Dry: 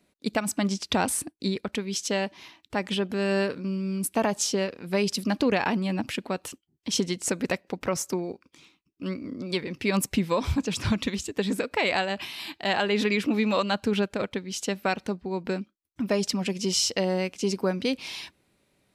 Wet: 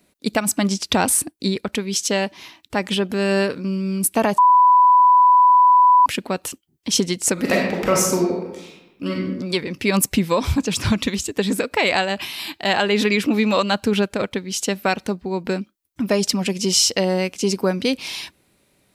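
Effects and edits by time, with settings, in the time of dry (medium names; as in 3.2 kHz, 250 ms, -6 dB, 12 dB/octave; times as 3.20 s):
4.38–6.06 s: bleep 994 Hz -15 dBFS
7.33–9.14 s: reverb throw, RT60 1 s, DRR -2.5 dB
whole clip: treble shelf 8.4 kHz +8 dB; trim +6 dB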